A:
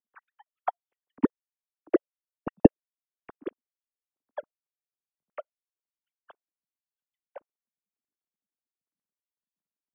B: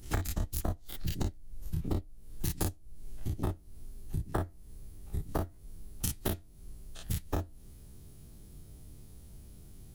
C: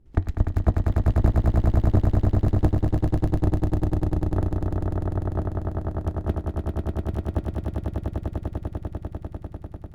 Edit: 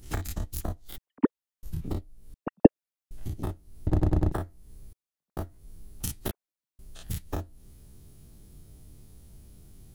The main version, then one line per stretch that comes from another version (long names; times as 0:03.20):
B
0:00.98–0:01.63: punch in from A
0:02.34–0:03.11: punch in from A
0:03.87–0:04.32: punch in from C
0:04.93–0:05.37: punch in from A
0:06.31–0:06.79: punch in from A